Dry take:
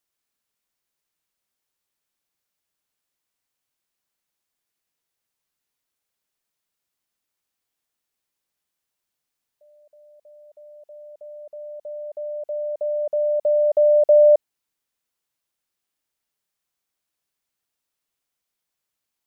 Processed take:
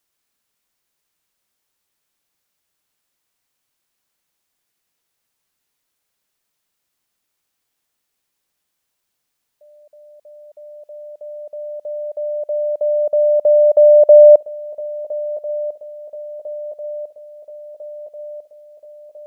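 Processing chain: swung echo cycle 1.349 s, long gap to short 3:1, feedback 59%, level -16.5 dB; gain +7 dB

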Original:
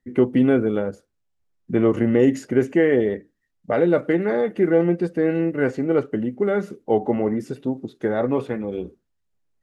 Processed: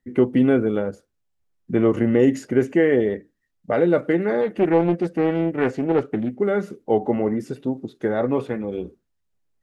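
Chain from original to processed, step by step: 4.41–6.4 Doppler distortion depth 0.35 ms

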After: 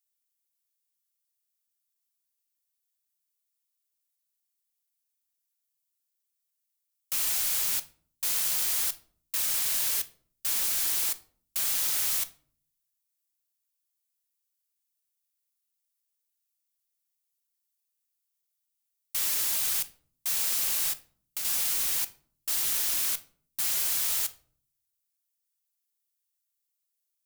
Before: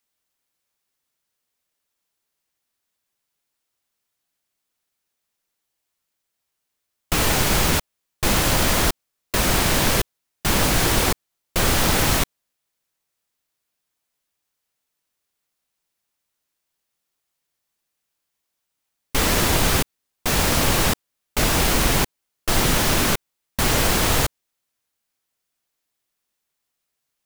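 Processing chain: pre-emphasis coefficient 0.97; 20.91–21.45 compressor, threshold -25 dBFS, peak gain reduction 6 dB; shoebox room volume 520 m³, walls furnished, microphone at 0.6 m; gain -5.5 dB

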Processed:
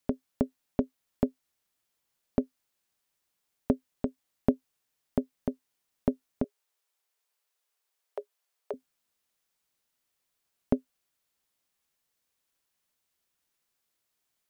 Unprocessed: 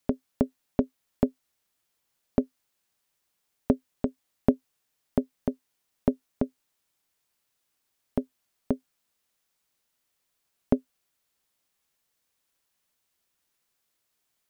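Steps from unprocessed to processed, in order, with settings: 6.44–8.74 elliptic high-pass 400 Hz, stop band 40 dB; gain -3 dB

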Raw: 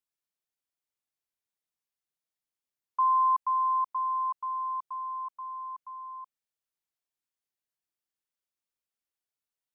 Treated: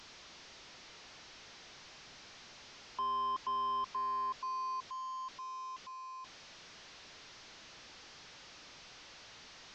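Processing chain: delta modulation 32 kbps, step -41.5 dBFS; gain -6 dB

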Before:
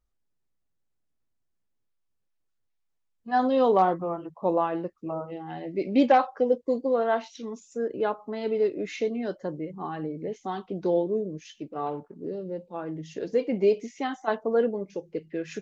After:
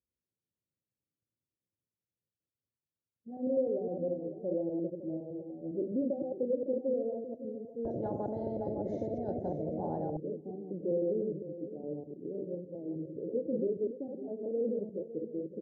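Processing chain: reverse delay 0.102 s, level -2 dB; HPF 82 Hz 24 dB/oct; limiter -16.5 dBFS, peak gain reduction 9.5 dB; elliptic low-pass 560 Hz, stop band 50 dB; echo 0.559 s -13 dB; reverb RT60 0.70 s, pre-delay 4 ms, DRR 13 dB; 7.85–10.17 spectral compressor 10:1; gain -6.5 dB

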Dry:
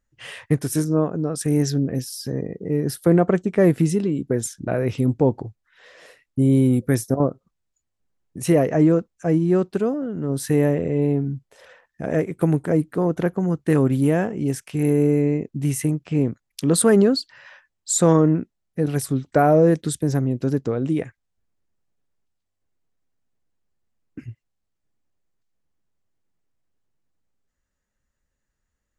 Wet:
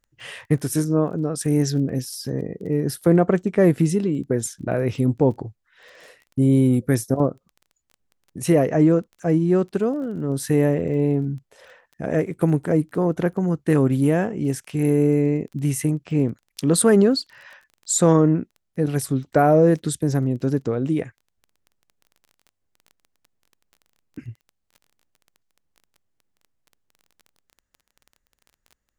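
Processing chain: crackle 17/s -37 dBFS

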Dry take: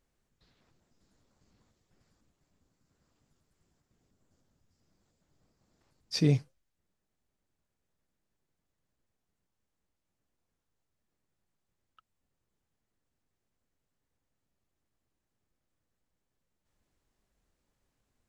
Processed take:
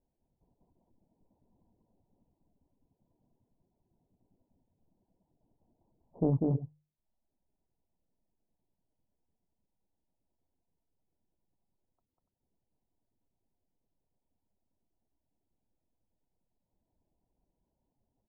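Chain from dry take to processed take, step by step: rippled Chebyshev low-pass 990 Hz, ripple 3 dB; notches 50/100/150 Hz; loudspeakers at several distances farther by 67 m -1 dB, 99 m -8 dB; reverb removal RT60 0.61 s; Doppler distortion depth 0.57 ms

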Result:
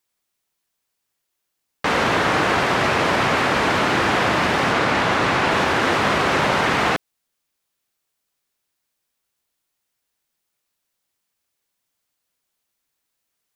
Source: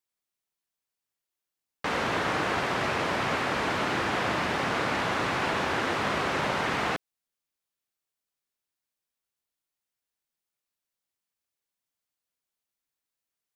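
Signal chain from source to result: in parallel at -1 dB: limiter -22 dBFS, peak gain reduction 6.5 dB; 4.72–5.51 on the sum: high shelf 10000 Hz -6.5 dB; gain +5 dB

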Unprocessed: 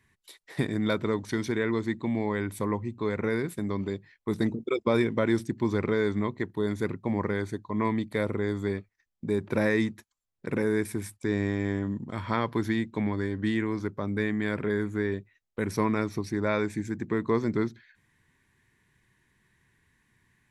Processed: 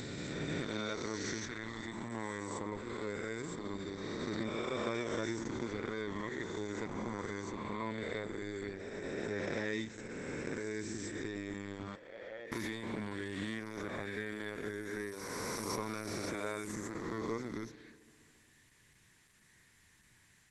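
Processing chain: spectral swells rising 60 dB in 2.81 s; 11.95–12.52 vowel filter e; bell 8600 Hz +12 dB 2.5 oct; compressor 1.5:1, threshold -49 dBFS, peak gain reduction 12 dB; 1.38–2.11 bell 430 Hz -8.5 dB 0.91 oct; 14.81–15.67 notches 50/100/150/200/250/300/350 Hz; FDN reverb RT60 2 s, low-frequency decay 1.2×, high-frequency decay 1×, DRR 17 dB; gain -3.5 dB; Opus 12 kbps 48000 Hz

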